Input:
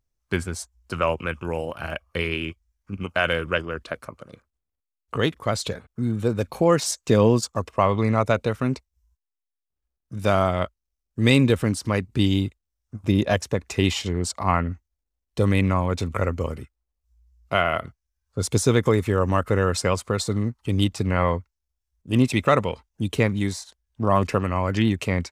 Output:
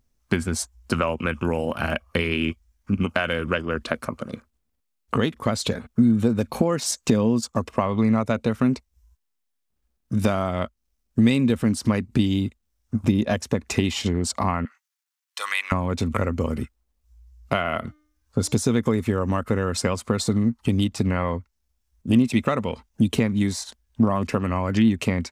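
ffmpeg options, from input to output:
-filter_complex "[0:a]asettb=1/sr,asplit=3[a][b][c];[a]atrim=end=14.654[d];[b]atrim=start=14.65:end=15.72,asetpts=PTS-STARTPTS,afade=t=in:d=0.004:c=qsin,afade=t=out:st=1.066:d=0.004:c=qsin,highpass=f=1.1k:w=0.5412,highpass=f=1.1k:w=1.3066[e];[c]atrim=start=15.716[f];[d][e]acrossfade=d=0.004:c1=hsin:c2=qsin[g];[g][f]acrossfade=d=0.004:c1=qsin:c2=hsin,asettb=1/sr,asplit=3[h][i][j];[h]atrim=end=17.804[k];[i]atrim=start=17.8:end=18.55,asetpts=PTS-STARTPTS,afade=t=in:d=0.004:c=qsin,afade=t=out:st=0.746:d=0.004:c=qsin,bandreject=f=302.3:t=h:w=4,bandreject=f=604.6:t=h:w=4,bandreject=f=906.9:t=h:w=4,bandreject=f=1.2092k:t=h:w=4,bandreject=f=1.5115k:t=h:w=4,bandreject=f=1.8138k:t=h:w=4,bandreject=f=2.1161k:t=h:w=4,bandreject=f=2.4184k:t=h:w=4,bandreject=f=2.7207k:t=h:w=4,bandreject=f=3.023k:t=h:w=4,bandreject=f=3.3253k:t=h:w=4,bandreject=f=3.6276k:t=h:w=4,bandreject=f=3.9299k:t=h:w=4,bandreject=f=4.2322k:t=h:w=4,bandreject=f=4.5345k:t=h:w=4,bandreject=f=4.8368k:t=h:w=4,bandreject=f=5.1391k:t=h:w=4,bandreject=f=5.4414k:t=h:w=4,bandreject=f=5.7437k:t=h:w=4,bandreject=f=6.046k:t=h:w=4,bandreject=f=6.3483k:t=h:w=4,bandreject=f=6.6506k:t=h:w=4,bandreject=f=6.9529k:t=h:w=4,bandreject=f=7.2552k:t=h:w=4,bandreject=f=7.5575k:t=h:w=4[l];[j]atrim=start=18.546[m];[k][l]acrossfade=d=0.004:c1=hsin:c2=qsin[n];[n][m]acrossfade=d=0.004:c1=qsin:c2=hsin,acompressor=threshold=-29dB:ratio=6,equalizer=f=230:t=o:w=0.4:g=10,volume=8.5dB"

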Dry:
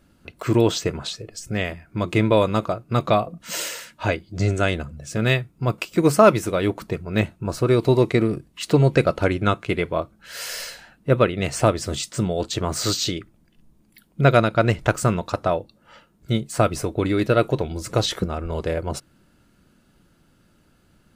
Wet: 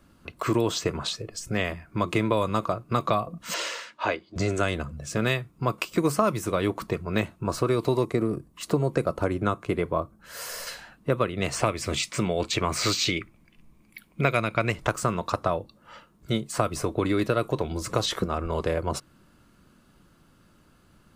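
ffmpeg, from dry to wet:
-filter_complex "[0:a]asettb=1/sr,asplit=3[a][b][c];[a]atrim=end=3.544[d];[b]atrim=start=3.54:end=4.36,asetpts=PTS-STARTPTS,afade=t=in:d=0.004:c=qsin,afade=t=out:st=0.816:d=0.004:c=qsin,acrossover=split=280 6300:gain=0.126 1 0.0891[e][f][g];[e][f][g]amix=inputs=3:normalize=0[h];[c]atrim=start=4.356[i];[d][h]acrossfade=d=0.004:c1=hsin:c2=qsin[j];[j][i]acrossfade=d=0.004:c1=qsin:c2=hsin,asettb=1/sr,asplit=3[k][l][m];[k]atrim=end=8.054[n];[l]atrim=start=8.05:end=10.67,asetpts=PTS-STARTPTS,afade=t=in:d=0.004:c=qsin,afade=t=out:st=2.616:d=0.004:c=qsin,equalizer=f=3.1k:w=0.57:g=-9[o];[m]atrim=start=10.666[p];[n][o]acrossfade=d=0.004:c1=hsin:c2=qsin[q];[q][p]acrossfade=d=0.004:c1=qsin:c2=hsin,asettb=1/sr,asplit=3[r][s][t];[r]atrim=end=11.634[u];[s]atrim=start=11.63:end=14.72,asetpts=PTS-STARTPTS,afade=t=in:d=0.004:c=qsin,afade=t=out:st=3.086:d=0.004:c=qsin,equalizer=f=2.3k:t=o:w=0.36:g=14[v];[t]atrim=start=14.716[w];[u][v]acrossfade=d=0.004:c1=hsin:c2=qsin[x];[x][w]acrossfade=d=0.004:c1=qsin:c2=hsin,equalizer=f=1.1k:t=o:w=0.29:g=8.5,acrossover=split=210|6400[y][z][aa];[y]acompressor=threshold=-31dB:ratio=4[ab];[z]acompressor=threshold=-22dB:ratio=4[ac];[aa]acompressor=threshold=-37dB:ratio=4[ad];[ab][ac][ad]amix=inputs=3:normalize=0"

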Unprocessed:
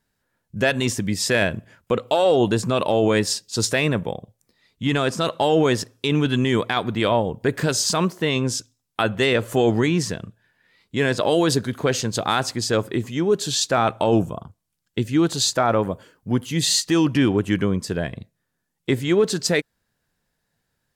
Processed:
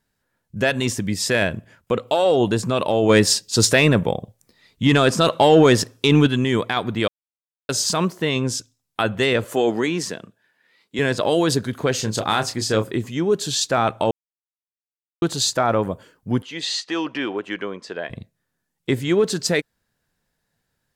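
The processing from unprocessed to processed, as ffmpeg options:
-filter_complex "[0:a]asplit=3[a][b][c];[a]afade=t=out:st=3.08:d=0.02[d];[b]acontrast=55,afade=t=in:st=3.08:d=0.02,afade=t=out:st=6.26:d=0.02[e];[c]afade=t=in:st=6.26:d=0.02[f];[d][e][f]amix=inputs=3:normalize=0,asettb=1/sr,asplit=3[g][h][i];[g]atrim=end=9.444[j];[h]atrim=start=9.44:end=10.99,asetpts=PTS-STARTPTS,afade=t=in:d=0.004:c=qsin,afade=t=out:st=1.546:d=0.004:c=qsin,highpass=250[k];[i]atrim=start=10.986[l];[j][k]acrossfade=d=0.004:c1=hsin:c2=qsin[m];[m][l]acrossfade=d=0.004:c1=qsin:c2=hsin,asettb=1/sr,asplit=3[n][o][p];[n]atrim=end=11.984[q];[o]atrim=start=11.98:end=12.91,asetpts=PTS-STARTPTS,afade=t=in:d=0.004:c=qsin,afade=t=out:st=0.926:d=0.004:c=qsin,asplit=2[r][s];[s]adelay=28,volume=-8dB[t];[r][t]amix=inputs=2:normalize=0,atrim=end_sample=41013[u];[p]atrim=start=12.906[v];[q][u]acrossfade=d=0.004:c1=hsin:c2=qsin[w];[w][v]acrossfade=d=0.004:c1=qsin:c2=hsin,asettb=1/sr,asplit=3[x][y][z];[x]atrim=end=16.424[aa];[y]atrim=start=16.42:end=18.1,asetpts=PTS-STARTPTS,afade=t=in:d=0.004:c=qsin,afade=t=out:st=1.676:d=0.004:c=qsin,highpass=470,lowpass=3.9k[ab];[z]atrim=start=18.096[ac];[aa][ab]acrossfade=d=0.004:c1=hsin:c2=qsin[ad];[ad][ac]acrossfade=d=0.004:c1=qsin:c2=hsin,asplit=5[ae][af][ag][ah][ai];[ae]atrim=end=7.08,asetpts=PTS-STARTPTS,afade=t=out:st=7.076:d=0.004:c=hsin[aj];[af]atrim=start=7.08:end=7.69,asetpts=PTS-STARTPTS,volume=0[ak];[ag]atrim=start=7.69:end=14.11,asetpts=PTS-STARTPTS,afade=t=in:d=0.004:c=hsin,afade=t=out:st=6.416:d=0.004:c=hsin[al];[ah]atrim=start=14.11:end=15.22,asetpts=PTS-STARTPTS,volume=0[am];[ai]atrim=start=15.22,asetpts=PTS-STARTPTS,afade=t=in:d=0.004:c=hsin[an];[aj][ak][al][am][an]concat=n=5:v=0:a=1"

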